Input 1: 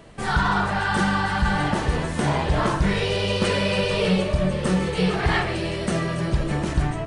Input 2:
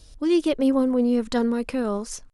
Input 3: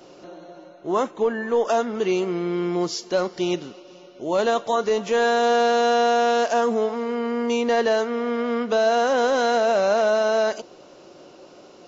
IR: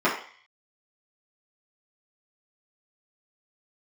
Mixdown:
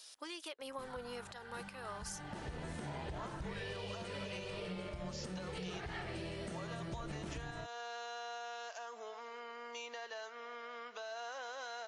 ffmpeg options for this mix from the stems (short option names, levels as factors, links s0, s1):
-filter_complex "[0:a]bandreject=f=1100:w=12,acompressor=threshold=0.0501:ratio=6,adelay=600,volume=0.282[s0];[1:a]lowshelf=f=300:g=-7,volume=1.19,asplit=2[s1][s2];[2:a]asoftclip=type=tanh:threshold=0.422,adelay=2250,volume=0.335[s3];[s2]apad=whole_len=338034[s4];[s0][s4]sidechaincompress=threshold=0.0355:ratio=12:attack=16:release=1330[s5];[s1][s3]amix=inputs=2:normalize=0,highpass=970,acompressor=threshold=0.00631:ratio=3,volume=1[s6];[s5][s6]amix=inputs=2:normalize=0,alimiter=level_in=2.99:limit=0.0631:level=0:latency=1:release=228,volume=0.335"